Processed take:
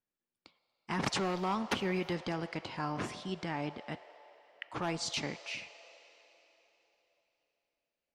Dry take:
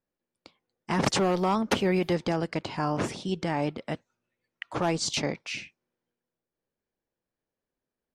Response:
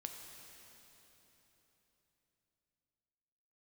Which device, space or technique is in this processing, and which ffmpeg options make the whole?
filtered reverb send: -filter_complex "[0:a]asettb=1/sr,asplit=3[a][b][c];[a]atrim=end=3.464[d];[b]atrim=start=3.46:end=3.92,asetpts=PTS-STARTPTS,afade=t=in:d=0.004:c=qsin,afade=t=out:st=0.456:d=0.004:c=qsin,lowpass=7.3k[e];[c]atrim=start=3.916[f];[d][e]acrossfade=d=0.004:c1=hsin:c2=qsin[g];[g][f]acrossfade=d=0.004:c1=qsin:c2=hsin,asplit=2[h][i];[i]highpass=f=540:w=0.5412,highpass=f=540:w=1.3066,lowpass=5.2k[j];[1:a]atrim=start_sample=2205[k];[j][k]afir=irnorm=-1:irlink=0,volume=-1.5dB[l];[h][l]amix=inputs=2:normalize=0,volume=-8.5dB"

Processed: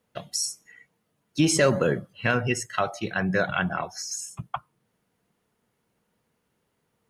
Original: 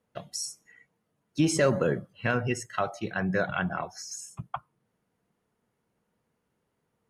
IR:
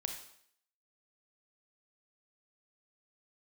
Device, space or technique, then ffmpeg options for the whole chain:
presence and air boost: -af "equalizer=f=3.4k:t=o:w=1.8:g=4,highshelf=f=9.2k:g=6.5,volume=2.5dB"

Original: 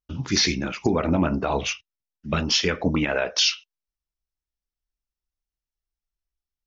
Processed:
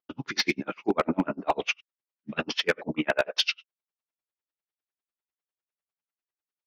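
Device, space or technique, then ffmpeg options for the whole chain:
helicopter radio: -af "highpass=310,lowpass=2.9k,aeval=exprs='val(0)*pow(10,-38*(0.5-0.5*cos(2*PI*10*n/s))/20)':c=same,asoftclip=type=hard:threshold=-21dB,volume=7dB"

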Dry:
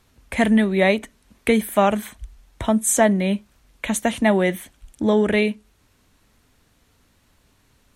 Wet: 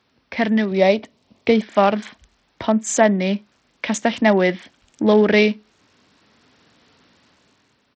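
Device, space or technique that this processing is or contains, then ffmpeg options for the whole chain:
Bluetooth headset: -filter_complex "[0:a]asettb=1/sr,asplit=3[a][b][c];[a]atrim=end=0.714[d];[b]atrim=start=0.71:end=1.62,asetpts=PTS-STARTPTS,afade=t=in:d=0.004:c=qsin,afade=t=out:st=0.906:d=0.004:c=qsin,equalizer=f=100:t=o:w=0.67:g=10,equalizer=f=630:t=o:w=0.67:g=5,equalizer=f=1.6k:t=o:w=0.67:g=-10[e];[c]atrim=start=1.616[f];[d][e]acrossfade=d=0.004:c1=hsin:c2=qsin[g];[g][f]acrossfade=d=0.004:c1=qsin:c2=hsin,highpass=170,dynaudnorm=f=180:g=9:m=9dB,aresample=16000,aresample=44100,volume=-1dB" -ar 44100 -c:a sbc -b:a 64k

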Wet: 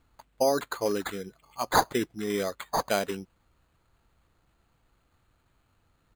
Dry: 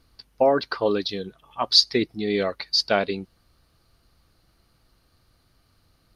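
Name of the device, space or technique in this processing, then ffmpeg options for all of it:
crushed at another speed: -af "asetrate=35280,aresample=44100,acrusher=samples=10:mix=1:aa=0.000001,asetrate=55125,aresample=44100,volume=-5.5dB"

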